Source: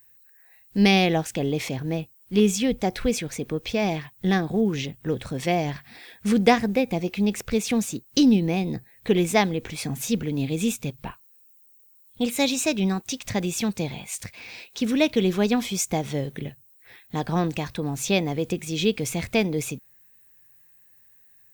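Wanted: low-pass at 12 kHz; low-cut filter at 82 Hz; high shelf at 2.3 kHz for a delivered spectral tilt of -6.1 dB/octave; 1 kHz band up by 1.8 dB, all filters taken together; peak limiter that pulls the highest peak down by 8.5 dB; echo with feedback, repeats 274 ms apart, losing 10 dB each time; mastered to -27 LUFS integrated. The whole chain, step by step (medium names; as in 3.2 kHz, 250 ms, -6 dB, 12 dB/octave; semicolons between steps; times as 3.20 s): high-pass 82 Hz; low-pass 12 kHz; peaking EQ 1 kHz +4 dB; treble shelf 2.3 kHz -8 dB; peak limiter -14 dBFS; feedback delay 274 ms, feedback 32%, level -10 dB; trim -0.5 dB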